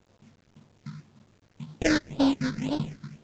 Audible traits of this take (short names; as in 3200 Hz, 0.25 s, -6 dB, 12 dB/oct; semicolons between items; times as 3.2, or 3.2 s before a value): aliases and images of a low sample rate 1200 Hz, jitter 20%; phasing stages 6, 1.9 Hz, lowest notch 720–2000 Hz; a quantiser's noise floor 10-bit, dither none; µ-law